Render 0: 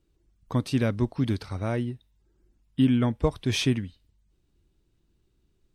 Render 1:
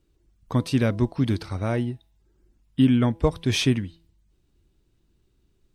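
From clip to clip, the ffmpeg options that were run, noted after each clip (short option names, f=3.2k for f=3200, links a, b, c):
-af "bandreject=f=165.7:t=h:w=4,bandreject=f=331.4:t=h:w=4,bandreject=f=497.1:t=h:w=4,bandreject=f=662.8:t=h:w=4,bandreject=f=828.5:t=h:w=4,bandreject=f=994.2:t=h:w=4,volume=3dB"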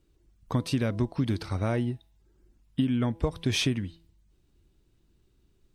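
-af "acompressor=threshold=-22dB:ratio=12"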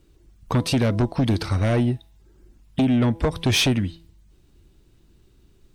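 -af "aeval=exprs='0.188*sin(PI/2*2*val(0)/0.188)':c=same"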